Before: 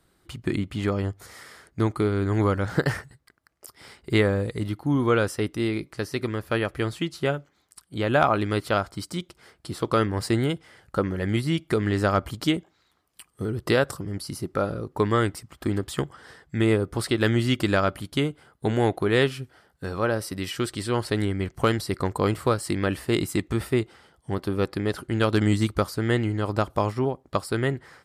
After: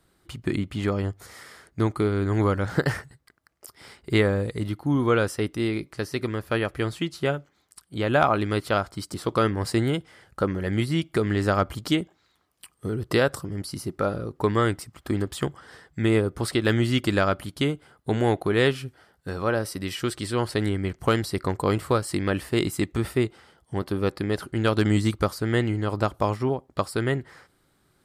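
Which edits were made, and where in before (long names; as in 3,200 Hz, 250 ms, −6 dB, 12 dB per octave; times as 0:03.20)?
0:09.14–0:09.70: remove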